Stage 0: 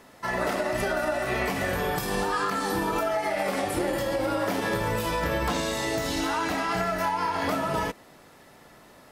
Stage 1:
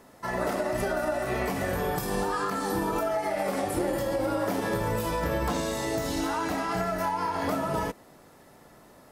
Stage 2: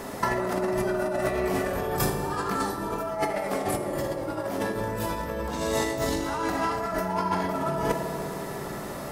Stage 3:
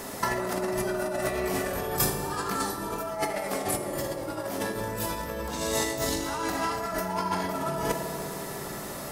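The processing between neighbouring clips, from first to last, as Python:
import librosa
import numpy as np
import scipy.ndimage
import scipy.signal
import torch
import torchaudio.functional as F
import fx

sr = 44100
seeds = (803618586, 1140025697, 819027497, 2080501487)

y1 = fx.peak_eq(x, sr, hz=2800.0, db=-6.5, octaves=2.1)
y2 = fx.over_compress(y1, sr, threshold_db=-35.0, ratio=-0.5)
y2 = fx.rev_fdn(y2, sr, rt60_s=3.0, lf_ratio=1.3, hf_ratio=0.35, size_ms=15.0, drr_db=5.0)
y2 = y2 * 10.0 ** (7.5 / 20.0)
y3 = fx.high_shelf(y2, sr, hz=3200.0, db=9.0)
y3 = y3 * 10.0 ** (-3.0 / 20.0)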